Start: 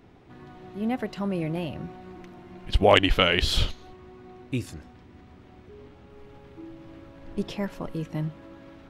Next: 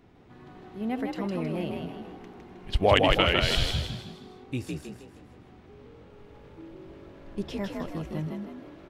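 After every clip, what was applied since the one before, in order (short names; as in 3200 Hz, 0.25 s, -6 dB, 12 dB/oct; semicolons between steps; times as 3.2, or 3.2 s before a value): frequency-shifting echo 0.158 s, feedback 42%, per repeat +47 Hz, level -3.5 dB; gain -3.5 dB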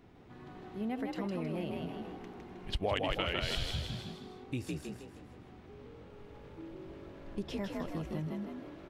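compressor 2.5:1, threshold -33 dBFS, peak gain reduction 12 dB; gain -1.5 dB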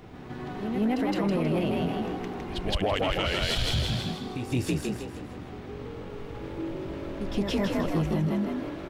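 limiter -28.5 dBFS, peak gain reduction 8.5 dB; reverse echo 0.167 s -8 dB; sample leveller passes 1; gain +8.5 dB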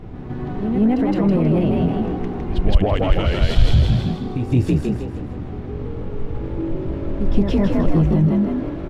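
tilt -3 dB/oct; gain +3.5 dB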